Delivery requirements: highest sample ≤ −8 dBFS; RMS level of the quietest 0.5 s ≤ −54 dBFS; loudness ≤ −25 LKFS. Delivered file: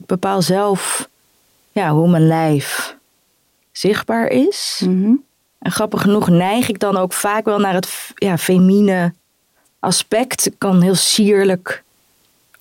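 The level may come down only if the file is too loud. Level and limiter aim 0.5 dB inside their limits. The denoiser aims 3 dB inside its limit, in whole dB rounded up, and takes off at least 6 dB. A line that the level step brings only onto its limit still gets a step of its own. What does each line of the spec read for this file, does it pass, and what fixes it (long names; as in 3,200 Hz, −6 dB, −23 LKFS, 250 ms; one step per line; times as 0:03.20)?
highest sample −5.5 dBFS: out of spec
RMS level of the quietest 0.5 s −61 dBFS: in spec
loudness −15.5 LKFS: out of spec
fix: level −10 dB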